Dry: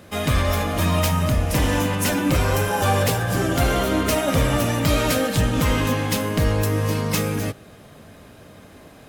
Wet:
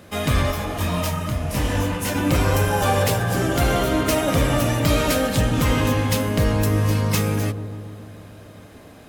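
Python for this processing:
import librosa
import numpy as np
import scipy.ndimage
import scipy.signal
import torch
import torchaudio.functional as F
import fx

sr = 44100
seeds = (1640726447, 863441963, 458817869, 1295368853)

y = fx.echo_wet_lowpass(x, sr, ms=144, feedback_pct=69, hz=800.0, wet_db=-9.0)
y = fx.detune_double(y, sr, cents=fx.line((0.5, 42.0), (2.14, 30.0)), at=(0.5, 2.14), fade=0.02)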